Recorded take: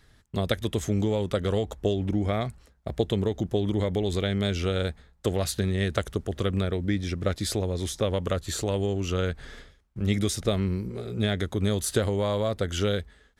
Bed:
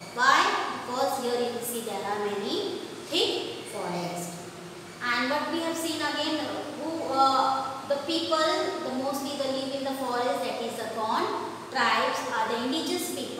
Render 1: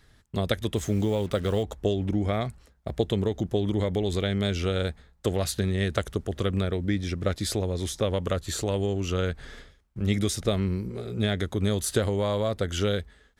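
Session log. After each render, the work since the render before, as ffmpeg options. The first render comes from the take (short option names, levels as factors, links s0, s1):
-filter_complex "[0:a]asettb=1/sr,asplit=3[s0][s1][s2];[s0]atrim=end=0.764[s3];[s1]atrim=start=0.76:end=1.63,asetpts=PTS-STARTPTS,afade=t=in:d=0.004:c=qsin,afade=t=out:st=0.866:d=0.004:c=qsin,acrusher=bits=7:mix=0:aa=0.5[s4];[s2]atrim=start=1.626[s5];[s3][s4]acrossfade=d=0.004:c1=hsin:c2=qsin[s6];[s6][s5]acrossfade=d=0.004:c1=qsin:c2=hsin"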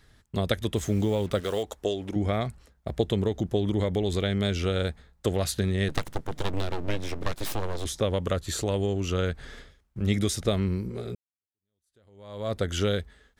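-filter_complex "[0:a]asettb=1/sr,asplit=3[s0][s1][s2];[s0]atrim=end=1.404[s3];[s1]atrim=start=1.4:end=2.16,asetpts=PTS-STARTPTS,afade=t=in:d=0.004:c=qsin,afade=t=out:st=0.756:d=0.004:c=qsin,bass=f=250:g=-12,treble=f=4000:g=4[s4];[s2]atrim=start=2.156[s5];[s3][s4]acrossfade=d=0.004:c1=hsin:c2=qsin[s6];[s6][s5]acrossfade=d=0.004:c1=qsin:c2=hsin,asplit=3[s7][s8][s9];[s7]afade=t=out:st=5.88:d=0.02[s10];[s8]aeval=exprs='abs(val(0))':c=same,afade=t=in:st=5.88:d=0.02,afade=t=out:st=7.84:d=0.02[s11];[s9]afade=t=in:st=7.84:d=0.02[s12];[s10][s11][s12]amix=inputs=3:normalize=0,asplit=2[s13][s14];[s13]atrim=end=11.15,asetpts=PTS-STARTPTS,afade=t=out:st=11.146:d=0.004:c=hsin[s15];[s14]atrim=start=11.15,asetpts=PTS-STARTPTS,afade=t=in:d=1.37:c=exp[s16];[s15][s16]concat=n=2:v=0:a=1"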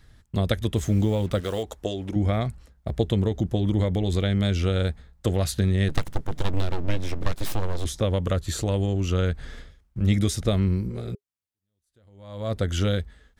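-af "lowshelf=f=180:g=7.5,bandreject=f=410:w=13"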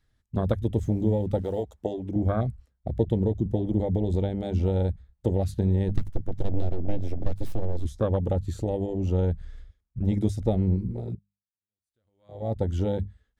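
-af "bandreject=f=50:t=h:w=6,bandreject=f=100:t=h:w=6,bandreject=f=150:t=h:w=6,bandreject=f=200:t=h:w=6,afwtdn=0.0447"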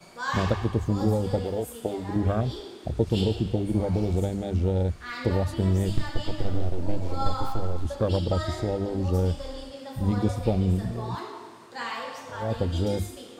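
-filter_complex "[1:a]volume=0.335[s0];[0:a][s0]amix=inputs=2:normalize=0"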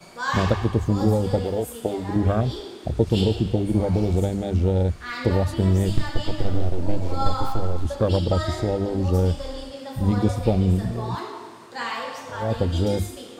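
-af "volume=1.58"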